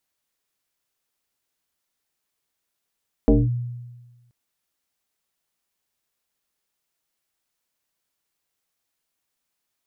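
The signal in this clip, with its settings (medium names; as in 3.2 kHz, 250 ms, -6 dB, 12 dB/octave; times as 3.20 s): FM tone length 1.03 s, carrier 121 Hz, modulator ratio 1.4, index 2.5, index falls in 0.21 s linear, decay 1.30 s, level -10 dB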